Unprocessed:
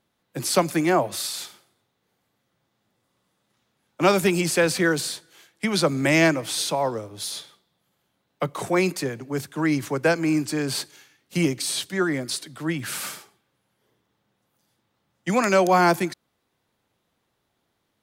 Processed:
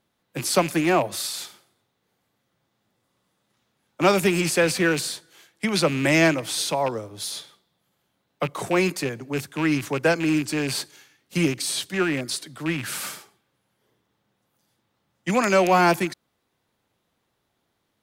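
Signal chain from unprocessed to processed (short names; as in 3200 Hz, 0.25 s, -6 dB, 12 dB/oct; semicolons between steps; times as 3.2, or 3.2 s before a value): rattling part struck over -30 dBFS, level -21 dBFS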